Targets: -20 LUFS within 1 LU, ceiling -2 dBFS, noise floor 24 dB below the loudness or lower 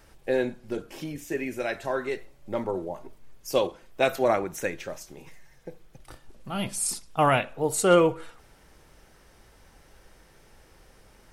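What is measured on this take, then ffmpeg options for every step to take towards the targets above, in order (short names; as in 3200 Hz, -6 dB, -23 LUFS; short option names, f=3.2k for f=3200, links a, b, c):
loudness -27.5 LUFS; peak -8.5 dBFS; loudness target -20.0 LUFS
-> -af "volume=7.5dB,alimiter=limit=-2dB:level=0:latency=1"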